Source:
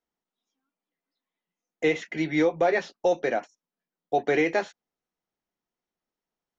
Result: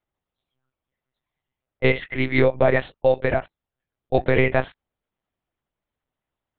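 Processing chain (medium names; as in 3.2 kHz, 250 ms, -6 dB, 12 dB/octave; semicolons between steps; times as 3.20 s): monotone LPC vocoder at 8 kHz 130 Hz; trim +5 dB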